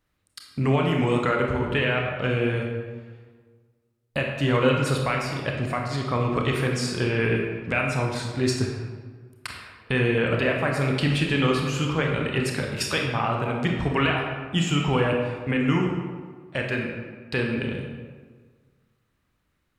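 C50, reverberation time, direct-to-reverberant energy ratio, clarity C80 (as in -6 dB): 2.5 dB, 1.5 s, 0.5 dB, 4.0 dB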